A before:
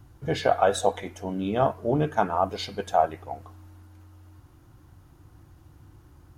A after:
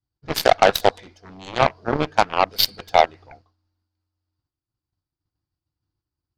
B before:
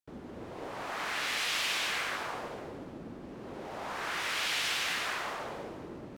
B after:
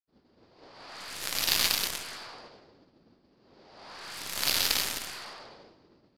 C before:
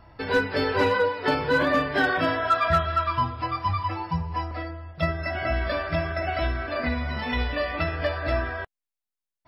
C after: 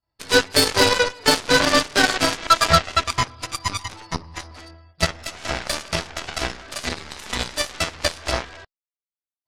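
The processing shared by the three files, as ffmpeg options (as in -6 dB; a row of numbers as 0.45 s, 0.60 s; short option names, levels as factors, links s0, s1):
-af "lowpass=f=4700:t=q:w=7.6,aeval=exprs='0.422*(cos(1*acos(clip(val(0)/0.422,-1,1)))-cos(1*PI/2))+0.015*(cos(4*acos(clip(val(0)/0.422,-1,1)))-cos(4*PI/2))+0.0266*(cos(6*acos(clip(val(0)/0.422,-1,1)))-cos(6*PI/2))+0.075*(cos(7*acos(clip(val(0)/0.422,-1,1)))-cos(7*PI/2))+0.00473*(cos(8*acos(clip(val(0)/0.422,-1,1)))-cos(8*PI/2))':c=same,agate=range=0.0224:threshold=0.00447:ratio=3:detection=peak,volume=2"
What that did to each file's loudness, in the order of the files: +6.0 LU, +4.5 LU, +5.0 LU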